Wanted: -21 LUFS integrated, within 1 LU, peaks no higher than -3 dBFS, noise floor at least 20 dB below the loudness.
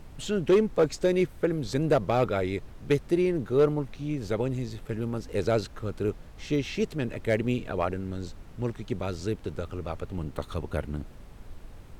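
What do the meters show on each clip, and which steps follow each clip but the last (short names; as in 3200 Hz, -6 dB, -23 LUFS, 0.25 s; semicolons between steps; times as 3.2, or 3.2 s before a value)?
clipped 0.4%; flat tops at -15.0 dBFS; noise floor -47 dBFS; noise floor target -49 dBFS; loudness -29.0 LUFS; peak -15.0 dBFS; loudness target -21.0 LUFS
-> clip repair -15 dBFS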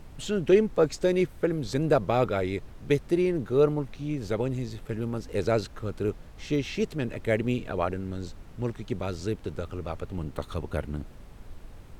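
clipped 0.0%; noise floor -47 dBFS; noise floor target -49 dBFS
-> noise print and reduce 6 dB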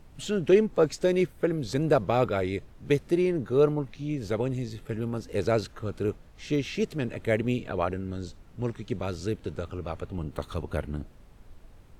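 noise floor -52 dBFS; loudness -28.5 LUFS; peak -9.0 dBFS; loudness target -21.0 LUFS
-> gain +7.5 dB; limiter -3 dBFS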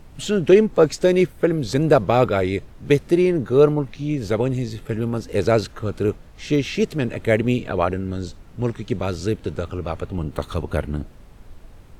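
loudness -21.0 LUFS; peak -3.0 dBFS; noise floor -45 dBFS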